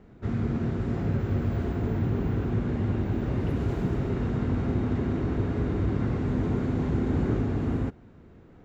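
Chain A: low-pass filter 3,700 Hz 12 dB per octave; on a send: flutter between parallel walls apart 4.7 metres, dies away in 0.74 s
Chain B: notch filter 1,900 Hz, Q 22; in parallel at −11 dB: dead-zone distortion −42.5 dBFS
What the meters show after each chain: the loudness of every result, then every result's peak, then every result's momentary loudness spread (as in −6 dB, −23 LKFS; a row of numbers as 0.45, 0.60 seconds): −24.0, −26.0 LKFS; −9.0, −12.0 dBFS; 5, 2 LU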